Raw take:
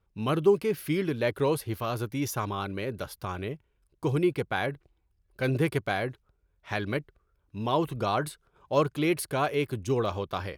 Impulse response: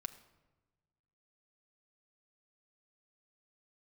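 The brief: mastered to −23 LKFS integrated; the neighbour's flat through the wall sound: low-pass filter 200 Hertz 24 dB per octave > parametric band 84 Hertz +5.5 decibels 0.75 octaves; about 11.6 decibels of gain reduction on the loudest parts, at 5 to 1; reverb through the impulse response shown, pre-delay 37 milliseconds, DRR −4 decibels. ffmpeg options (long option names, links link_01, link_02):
-filter_complex "[0:a]acompressor=threshold=-29dB:ratio=5,asplit=2[link_01][link_02];[1:a]atrim=start_sample=2205,adelay=37[link_03];[link_02][link_03]afir=irnorm=-1:irlink=0,volume=6.5dB[link_04];[link_01][link_04]amix=inputs=2:normalize=0,lowpass=frequency=200:width=0.5412,lowpass=frequency=200:width=1.3066,equalizer=frequency=84:width_type=o:width=0.75:gain=5.5,volume=10dB"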